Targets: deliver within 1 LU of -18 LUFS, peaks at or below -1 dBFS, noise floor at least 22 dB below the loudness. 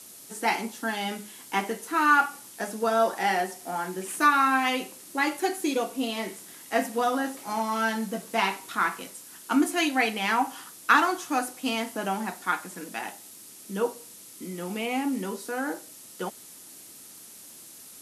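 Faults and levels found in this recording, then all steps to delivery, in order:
noise floor -47 dBFS; noise floor target -49 dBFS; loudness -27.0 LUFS; peak -6.0 dBFS; loudness target -18.0 LUFS
-> denoiser 6 dB, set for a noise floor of -47 dBFS; gain +9 dB; limiter -1 dBFS

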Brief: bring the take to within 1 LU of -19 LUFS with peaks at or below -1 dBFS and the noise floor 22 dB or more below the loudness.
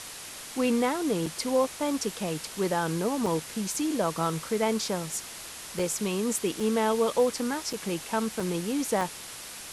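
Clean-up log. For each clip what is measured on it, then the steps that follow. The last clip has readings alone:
dropouts 7; longest dropout 4.0 ms; noise floor -42 dBFS; noise floor target -51 dBFS; loudness -29.0 LUFS; peak -13.5 dBFS; loudness target -19.0 LUFS
-> interpolate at 1.26/3.26/5.79/6.6/7.73/8.4/9.01, 4 ms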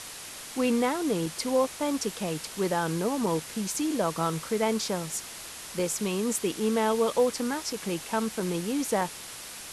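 dropouts 0; noise floor -42 dBFS; noise floor target -51 dBFS
-> denoiser 9 dB, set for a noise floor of -42 dBFS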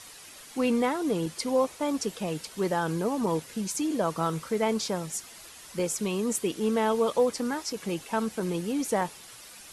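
noise floor -48 dBFS; noise floor target -51 dBFS
-> denoiser 6 dB, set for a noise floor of -48 dBFS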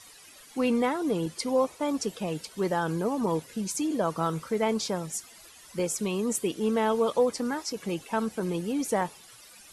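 noise floor -52 dBFS; loudness -29.0 LUFS; peak -13.5 dBFS; loudness target -19.0 LUFS
-> gain +10 dB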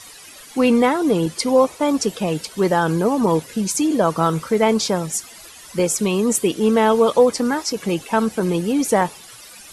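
loudness -19.0 LUFS; peak -3.5 dBFS; noise floor -42 dBFS

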